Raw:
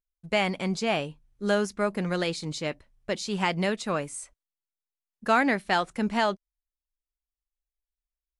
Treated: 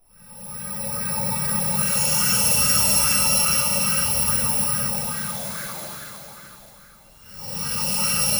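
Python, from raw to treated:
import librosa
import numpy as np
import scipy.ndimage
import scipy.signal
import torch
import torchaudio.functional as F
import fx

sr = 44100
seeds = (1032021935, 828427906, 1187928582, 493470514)

y = fx.bit_reversed(x, sr, seeds[0], block=128)
y = fx.paulstretch(y, sr, seeds[1], factor=19.0, window_s=0.05, from_s=1.39)
y = fx.echo_feedback(y, sr, ms=615, feedback_pct=30, wet_db=-10.5)
y = fx.rev_plate(y, sr, seeds[2], rt60_s=2.3, hf_ratio=0.75, predelay_ms=0, drr_db=0.5)
y = fx.bell_lfo(y, sr, hz=2.4, low_hz=680.0, high_hz=1600.0, db=11)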